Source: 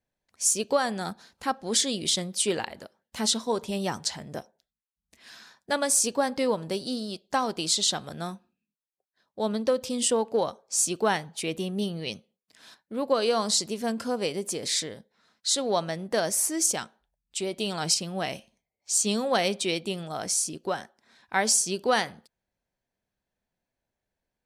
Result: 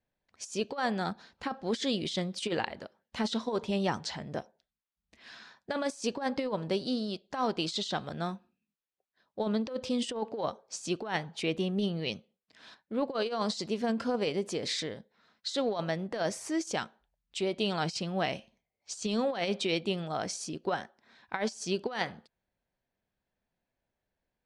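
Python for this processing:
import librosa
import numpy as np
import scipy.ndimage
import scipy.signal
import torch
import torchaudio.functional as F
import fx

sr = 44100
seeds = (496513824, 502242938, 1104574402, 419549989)

y = fx.over_compress(x, sr, threshold_db=-27.0, ratio=-0.5)
y = scipy.signal.sosfilt(scipy.signal.butter(2, 4200.0, 'lowpass', fs=sr, output='sos'), y)
y = F.gain(torch.from_numpy(y), -2.0).numpy()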